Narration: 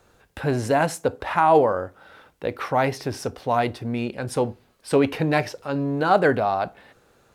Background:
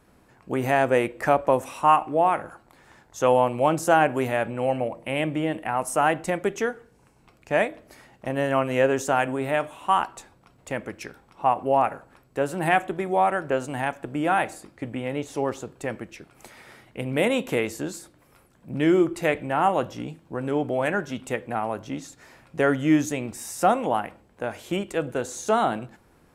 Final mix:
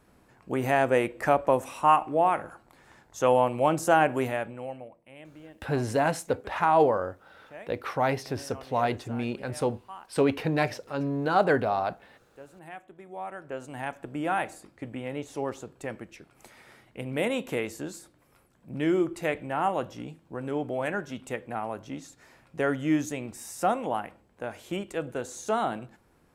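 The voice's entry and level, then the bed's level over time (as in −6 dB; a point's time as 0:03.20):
5.25 s, −4.5 dB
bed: 0:04.24 −2.5 dB
0:05.07 −22.5 dB
0:12.82 −22.5 dB
0:13.97 −5.5 dB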